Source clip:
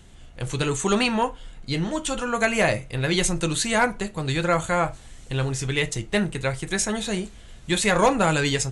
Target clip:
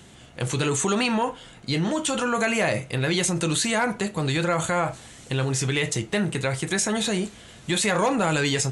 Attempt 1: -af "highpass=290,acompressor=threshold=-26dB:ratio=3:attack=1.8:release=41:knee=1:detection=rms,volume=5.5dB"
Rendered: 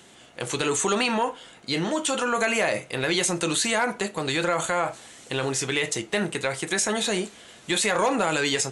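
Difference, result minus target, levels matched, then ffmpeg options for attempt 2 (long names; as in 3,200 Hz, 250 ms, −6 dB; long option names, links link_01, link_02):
125 Hz band −8.5 dB
-af "highpass=120,acompressor=threshold=-26dB:ratio=3:attack=1.8:release=41:knee=1:detection=rms,volume=5.5dB"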